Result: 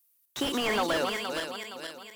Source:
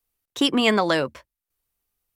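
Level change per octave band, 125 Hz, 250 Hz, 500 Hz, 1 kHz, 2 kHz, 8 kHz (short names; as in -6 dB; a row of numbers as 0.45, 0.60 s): -10.5, -10.0, -6.0, -4.5, -5.0, -0.5 dB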